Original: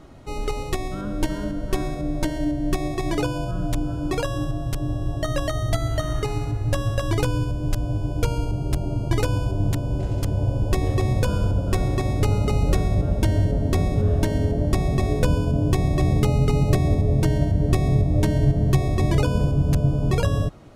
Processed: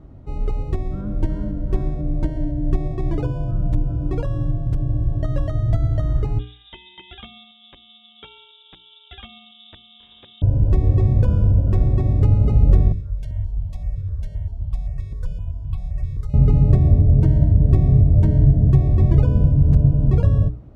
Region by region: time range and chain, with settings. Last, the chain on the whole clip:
6.39–10.42 HPF 440 Hz 6 dB/oct + inverted band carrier 3700 Hz
12.92–16.34 passive tone stack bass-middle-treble 10-0-10 + step phaser 7.7 Hz 210–1800 Hz
whole clip: HPF 46 Hz; tilt -4.5 dB/oct; notches 60/120/180/240/300/360/420 Hz; gain -8 dB

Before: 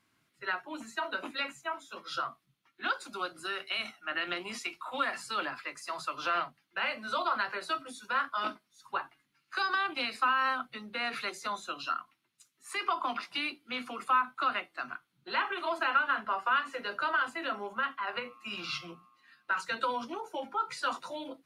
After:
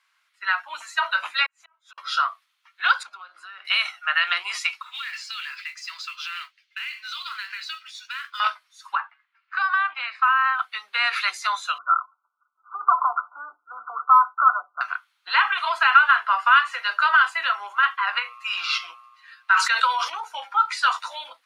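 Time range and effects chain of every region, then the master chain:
1.46–1.98 LPF 4000 Hz 6 dB/oct + flipped gate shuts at -34 dBFS, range -36 dB + compressor 16:1, threshold -58 dBFS
3.03–3.65 LPF 1200 Hz 6 dB/oct + compressor 10:1, threshold -48 dBFS
4.82–8.4 Chebyshev band-pass 2200–5800 Hz + compressor, threshold -41 dBFS + modulation noise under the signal 19 dB
8.95–10.59 LPF 1700 Hz + bell 440 Hz -10.5 dB 1.7 oct
11.78–14.81 brick-wall FIR low-pass 1500 Hz + comb 6.8 ms, depth 39%
19.53–20.24 steep high-pass 300 Hz 48 dB/oct + sustainer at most 48 dB/s
whole clip: HPF 1000 Hz 24 dB/oct; high shelf 8700 Hz -12 dB; AGC gain up to 6 dB; gain +7.5 dB

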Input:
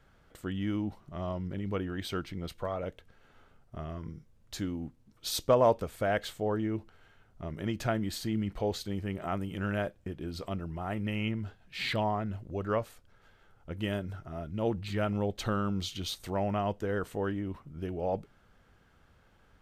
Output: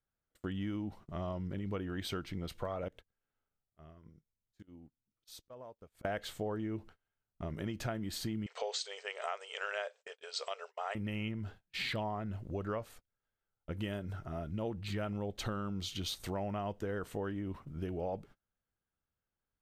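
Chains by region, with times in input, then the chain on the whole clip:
2.88–6.05 auto swell 0.156 s + compressor 16:1, threshold -46 dBFS
8.46–10.95 brick-wall FIR band-pass 410–8500 Hz + high shelf 2200 Hz +10.5 dB
whole clip: gate -49 dBFS, range -30 dB; compressor 4:1, threshold -36 dBFS; gain +1 dB

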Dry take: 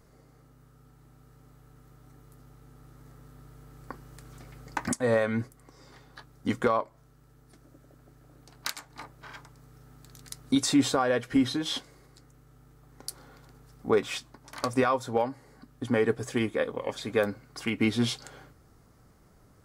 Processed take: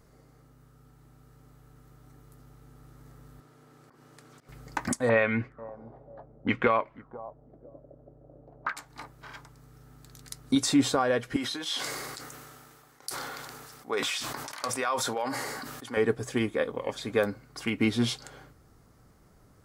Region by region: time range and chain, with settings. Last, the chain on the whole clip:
3.4–4.49 HPF 210 Hz + high shelf 11000 Hz -11.5 dB + auto swell 0.121 s
5.09–8.77 feedback echo 0.493 s, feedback 18%, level -21 dB + envelope low-pass 530–2500 Hz up, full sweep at -28 dBFS
11.36–15.97 HPF 1100 Hz 6 dB/oct + sustainer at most 24 dB/s
whole clip: dry

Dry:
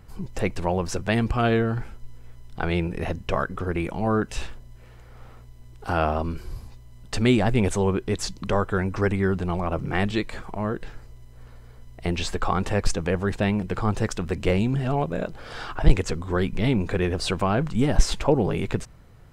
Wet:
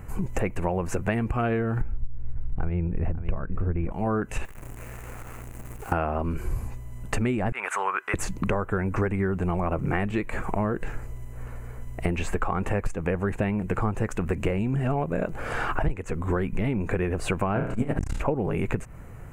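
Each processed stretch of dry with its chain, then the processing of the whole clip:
1.81–3.92 RIAA curve playback + echo 0.546 s -15.5 dB
4.45–5.92 compressor 20:1, threshold -43 dBFS + companded quantiser 4-bit
7.52–8.14 resonant high-pass 1300 Hz, resonance Q 2.7 + high shelf 5900 Hz -9 dB
17.52–18.21 flutter echo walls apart 5.8 m, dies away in 0.52 s + core saturation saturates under 250 Hz
whole clip: dynamic EQ 7300 Hz, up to -6 dB, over -49 dBFS, Q 1; compressor 16:1, threshold -30 dBFS; band shelf 4200 Hz -14 dB 1 oct; gain +8.5 dB

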